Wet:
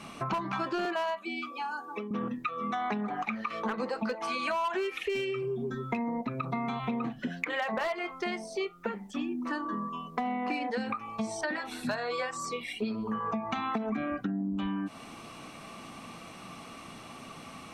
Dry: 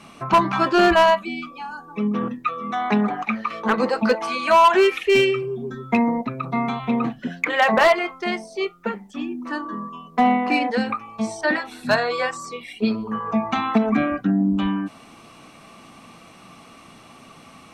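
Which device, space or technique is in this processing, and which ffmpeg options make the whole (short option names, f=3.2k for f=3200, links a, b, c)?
serial compression, peaks first: -filter_complex "[0:a]acompressor=threshold=-24dB:ratio=6,acompressor=threshold=-33dB:ratio=2,asettb=1/sr,asplit=3[a][b][c];[a]atrim=end=0.854[d];[b]atrim=start=0.85:end=2.11,asetpts=PTS-STARTPTS,afade=t=in:d=0.004:c=qsin,afade=t=out:st=1.256:d=0.004:c=qsin,highpass=f=270:w=0.5412,highpass=f=270:w=1.3066[e];[c]atrim=start=2.106[f];[d][e]acrossfade=d=0.004:c1=hsin:c2=qsin[g];[g][f]acrossfade=d=0.004:c1=qsin:c2=hsin"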